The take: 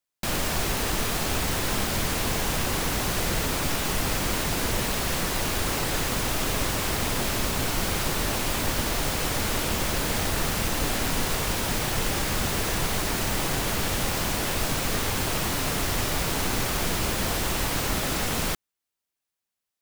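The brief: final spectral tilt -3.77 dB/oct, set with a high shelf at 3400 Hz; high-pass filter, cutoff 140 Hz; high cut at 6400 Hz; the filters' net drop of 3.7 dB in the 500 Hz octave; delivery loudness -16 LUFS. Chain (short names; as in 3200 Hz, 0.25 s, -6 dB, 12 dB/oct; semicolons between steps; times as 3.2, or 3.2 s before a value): HPF 140 Hz; LPF 6400 Hz; bell 500 Hz -4.5 dB; high shelf 3400 Hz -7 dB; gain +15 dB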